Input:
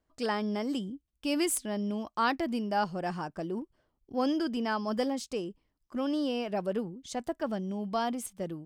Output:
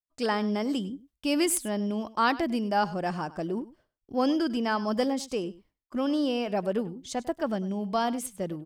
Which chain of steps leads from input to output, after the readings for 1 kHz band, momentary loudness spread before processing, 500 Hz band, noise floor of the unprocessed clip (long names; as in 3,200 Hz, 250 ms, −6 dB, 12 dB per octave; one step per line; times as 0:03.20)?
+3.5 dB, 8 LU, +3.5 dB, −80 dBFS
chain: downward expander −59 dBFS
single-tap delay 100 ms −18 dB
level +3.5 dB